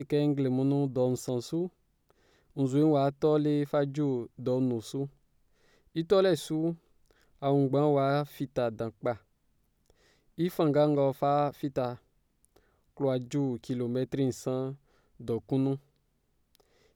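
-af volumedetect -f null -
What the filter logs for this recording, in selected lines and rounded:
mean_volume: -30.2 dB
max_volume: -12.8 dB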